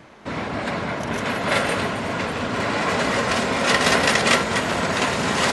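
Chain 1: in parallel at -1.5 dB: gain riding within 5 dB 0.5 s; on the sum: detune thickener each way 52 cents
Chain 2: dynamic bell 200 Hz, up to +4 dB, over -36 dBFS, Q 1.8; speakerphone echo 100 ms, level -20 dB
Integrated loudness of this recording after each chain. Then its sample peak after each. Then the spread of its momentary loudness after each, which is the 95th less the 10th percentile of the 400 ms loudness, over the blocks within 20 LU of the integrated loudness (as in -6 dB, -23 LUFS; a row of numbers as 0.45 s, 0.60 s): -19.5 LUFS, -20.5 LUFS; -4.0 dBFS, -3.5 dBFS; 5 LU, 9 LU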